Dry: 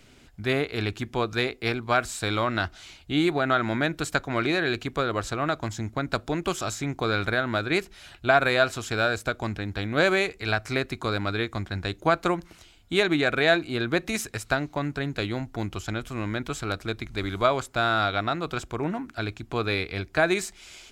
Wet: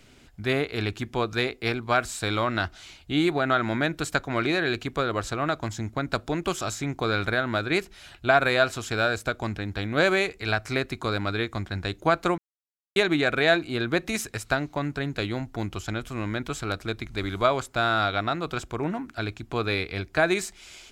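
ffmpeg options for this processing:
ffmpeg -i in.wav -filter_complex "[0:a]asplit=3[link_01][link_02][link_03];[link_01]atrim=end=12.38,asetpts=PTS-STARTPTS,afade=type=out:start_time=12.376:duration=0.004:curve=hsin[link_04];[link_02]atrim=start=12.38:end=12.96,asetpts=PTS-STARTPTS,volume=0[link_05];[link_03]atrim=start=12.96,asetpts=PTS-STARTPTS,afade=type=in:duration=0.004:curve=hsin[link_06];[link_04][link_05][link_06]concat=n=3:v=0:a=1" out.wav

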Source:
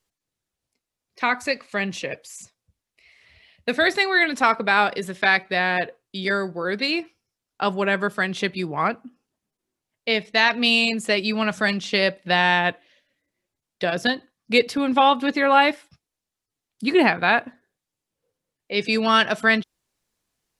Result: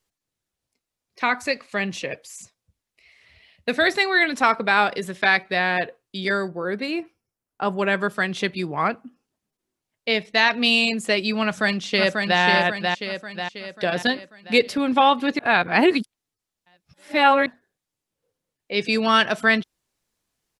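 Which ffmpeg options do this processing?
ffmpeg -i in.wav -filter_complex "[0:a]asettb=1/sr,asplit=3[link_01][link_02][link_03];[link_01]atrim=end=6.484[link_04];[link_02]atrim=start=6.48:end=7.79,asetpts=PTS-STARTPTS,afade=type=in:duration=0.004:curve=qsin,afade=type=out:start_time=1.306:duration=0.004:curve=qsin,equalizer=frequency=4300:width_type=o:width=2:gain=-10[link_05];[link_03]atrim=start=7.786[link_06];[link_04][link_05]acrossfade=duration=0.004:curve1=hsin:curve2=qsin[link_07];[link_07][link_06]acrossfade=duration=0.004:curve1=qsin:curve2=hsin,asplit=2[link_08][link_09];[link_09]afade=type=in:start_time=11.44:duration=0.01,afade=type=out:start_time=12.4:duration=0.01,aecho=0:1:540|1080|1620|2160|2700|3240|3780:0.668344|0.334172|0.167086|0.083543|0.0417715|0.0208857|0.0104429[link_10];[link_08][link_10]amix=inputs=2:normalize=0,asplit=3[link_11][link_12][link_13];[link_11]atrim=end=15.392[link_14];[link_12]atrim=start=15.388:end=17.462,asetpts=PTS-STARTPTS,areverse[link_15];[link_13]atrim=start=17.458[link_16];[link_14][link_15]acrossfade=duration=0.004:curve1=hsin:curve2=hsin[link_17];[link_17][link_16]acrossfade=duration=0.004:curve1=hsin:curve2=hsin" out.wav

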